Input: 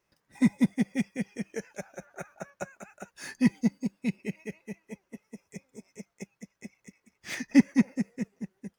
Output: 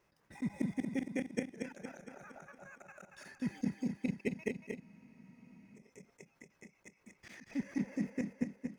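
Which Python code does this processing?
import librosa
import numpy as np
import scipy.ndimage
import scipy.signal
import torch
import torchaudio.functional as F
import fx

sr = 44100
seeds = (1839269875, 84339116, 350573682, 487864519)

p1 = fx.high_shelf(x, sr, hz=2900.0, db=-6.5)
p2 = fx.auto_swell(p1, sr, attack_ms=155.0)
p3 = fx.level_steps(p2, sr, step_db=21)
p4 = p3 + fx.echo_feedback(p3, sr, ms=231, feedback_pct=55, wet_db=-5.5, dry=0)
p5 = fx.spec_freeze(p4, sr, seeds[0], at_s=4.82, hold_s=0.95)
y = p5 * 10.0 ** (9.5 / 20.0)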